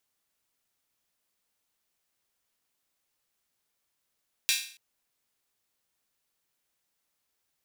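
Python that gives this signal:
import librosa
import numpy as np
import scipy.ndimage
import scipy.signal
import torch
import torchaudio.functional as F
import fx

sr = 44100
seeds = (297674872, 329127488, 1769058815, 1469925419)

y = fx.drum_hat_open(sr, length_s=0.28, from_hz=2700.0, decay_s=0.47)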